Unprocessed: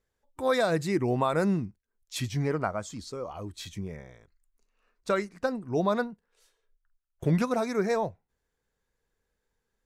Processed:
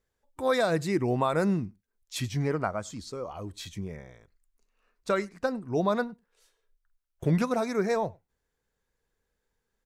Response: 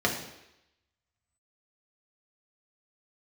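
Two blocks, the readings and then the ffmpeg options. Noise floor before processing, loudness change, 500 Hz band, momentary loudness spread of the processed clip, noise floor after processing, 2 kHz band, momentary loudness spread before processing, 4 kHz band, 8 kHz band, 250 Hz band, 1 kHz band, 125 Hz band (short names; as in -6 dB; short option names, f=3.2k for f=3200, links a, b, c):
-82 dBFS, 0.0 dB, 0.0 dB, 13 LU, -82 dBFS, 0.0 dB, 13 LU, 0.0 dB, 0.0 dB, 0.0 dB, 0.0 dB, 0.0 dB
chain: -filter_complex "[0:a]asplit=2[a][b];[b]adelay=99.13,volume=-28dB,highshelf=f=4k:g=-2.23[c];[a][c]amix=inputs=2:normalize=0"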